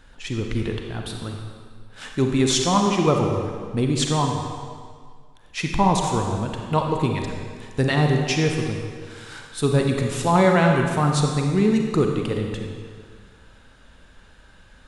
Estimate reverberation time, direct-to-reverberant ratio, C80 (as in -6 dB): 1.9 s, 2.0 dB, 4.0 dB